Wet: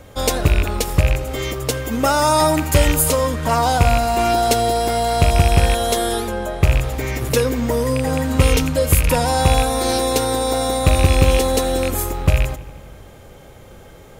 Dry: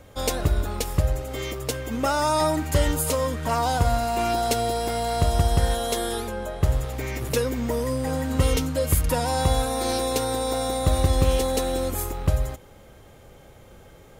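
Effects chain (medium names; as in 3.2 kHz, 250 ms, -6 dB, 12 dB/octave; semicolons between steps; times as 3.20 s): rattle on loud lows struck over -22 dBFS, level -18 dBFS; 1.79–3.08 s: treble shelf 10 kHz +6.5 dB; filtered feedback delay 83 ms, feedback 75%, low-pass 5 kHz, level -19 dB; trim +6.5 dB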